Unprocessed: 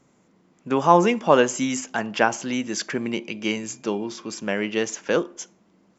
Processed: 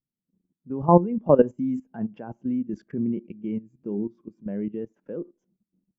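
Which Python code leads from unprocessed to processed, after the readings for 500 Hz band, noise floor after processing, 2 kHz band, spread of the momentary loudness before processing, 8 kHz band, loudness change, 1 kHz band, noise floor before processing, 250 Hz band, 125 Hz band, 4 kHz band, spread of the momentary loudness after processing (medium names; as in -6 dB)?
-2.5 dB, under -85 dBFS, under -20 dB, 12 LU, no reading, -2.5 dB, -7.0 dB, -61 dBFS, 0.0 dB, +4.0 dB, under -30 dB, 17 LU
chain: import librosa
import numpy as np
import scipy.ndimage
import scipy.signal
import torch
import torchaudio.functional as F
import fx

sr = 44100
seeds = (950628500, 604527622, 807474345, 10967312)

y = fx.level_steps(x, sr, step_db=15)
y = fx.tilt_eq(y, sr, slope=-4.5)
y = fx.spectral_expand(y, sr, expansion=1.5)
y = F.gain(torch.from_numpy(y), -1.5).numpy()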